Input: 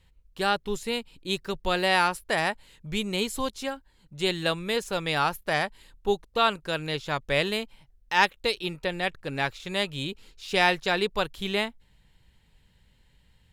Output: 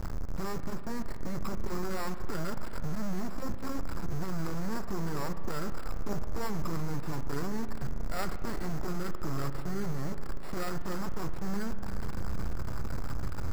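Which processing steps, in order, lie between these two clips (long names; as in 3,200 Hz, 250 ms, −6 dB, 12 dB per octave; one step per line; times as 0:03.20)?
linear delta modulator 64 kbit/s, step −17 dBFS
low-pass filter 1,700 Hz 24 dB per octave
dynamic equaliser 900 Hz, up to −6 dB, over −39 dBFS, Q 1.3
formants moved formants −5 semitones
decimation without filtering 7×
half-wave rectification
spring reverb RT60 3.8 s, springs 36 ms, chirp 40 ms, DRR 9.5 dB
level −5.5 dB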